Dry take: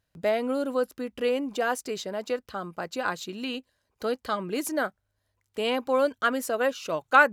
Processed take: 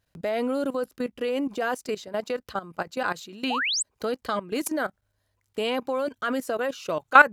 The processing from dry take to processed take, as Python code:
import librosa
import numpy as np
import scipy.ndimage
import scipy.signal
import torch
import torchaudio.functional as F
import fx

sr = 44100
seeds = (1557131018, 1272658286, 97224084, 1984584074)

y = fx.spec_paint(x, sr, seeds[0], shape='rise', start_s=3.5, length_s=0.33, low_hz=670.0, high_hz=8900.0, level_db=-29.0)
y = fx.level_steps(y, sr, step_db=16)
y = y * librosa.db_to_amplitude(6.0)